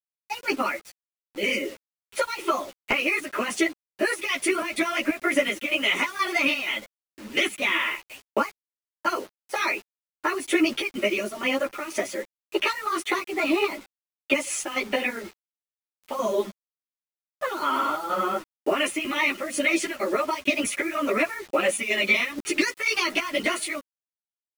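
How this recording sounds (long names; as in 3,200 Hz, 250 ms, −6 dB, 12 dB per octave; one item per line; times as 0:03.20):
chopped level 2.1 Hz, depth 60%, duty 70%
a quantiser's noise floor 8 bits, dither none
a shimmering, thickened sound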